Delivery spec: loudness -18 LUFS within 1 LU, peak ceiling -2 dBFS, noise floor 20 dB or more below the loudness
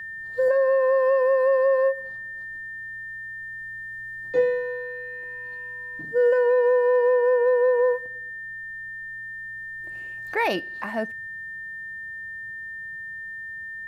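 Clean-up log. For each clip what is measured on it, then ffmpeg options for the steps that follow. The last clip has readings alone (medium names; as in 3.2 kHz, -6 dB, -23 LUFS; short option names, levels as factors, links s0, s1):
steady tone 1.8 kHz; tone level -33 dBFS; loudness -25.0 LUFS; peak level -11.5 dBFS; loudness target -18.0 LUFS
-> -af "bandreject=f=1800:w=30"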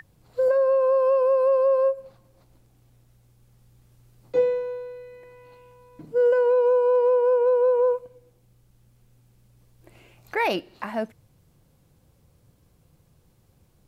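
steady tone not found; loudness -22.0 LUFS; peak level -12.0 dBFS; loudness target -18.0 LUFS
-> -af "volume=1.58"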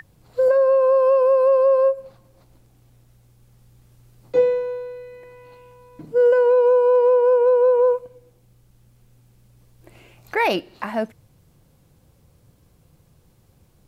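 loudness -18.0 LUFS; peak level -8.0 dBFS; noise floor -58 dBFS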